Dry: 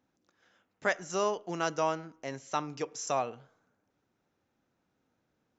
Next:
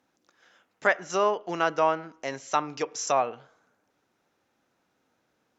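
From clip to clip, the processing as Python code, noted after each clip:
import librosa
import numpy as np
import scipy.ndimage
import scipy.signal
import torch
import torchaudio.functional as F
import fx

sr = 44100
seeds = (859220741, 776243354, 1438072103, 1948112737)

y = fx.env_lowpass_down(x, sr, base_hz=2500.0, full_db=-28.0)
y = fx.low_shelf(y, sr, hz=260.0, db=-11.5)
y = F.gain(torch.from_numpy(y), 8.0).numpy()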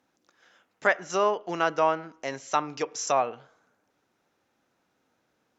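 y = x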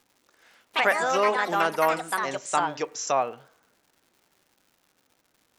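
y = fx.echo_pitch(x, sr, ms=111, semitones=4, count=3, db_per_echo=-3.0)
y = fx.dmg_crackle(y, sr, seeds[0], per_s=280.0, level_db=-50.0)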